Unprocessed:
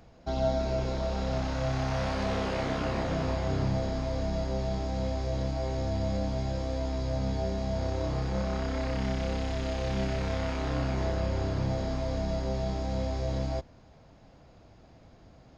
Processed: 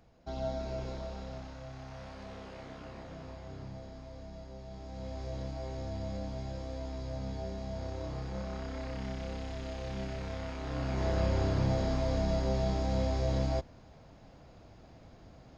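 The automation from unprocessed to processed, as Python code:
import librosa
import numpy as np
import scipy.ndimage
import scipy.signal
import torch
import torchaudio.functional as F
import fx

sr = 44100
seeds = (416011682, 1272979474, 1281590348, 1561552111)

y = fx.gain(x, sr, db=fx.line((0.9, -8.0), (1.66, -16.0), (4.64, -16.0), (5.23, -8.0), (10.6, -8.0), (11.2, 0.5)))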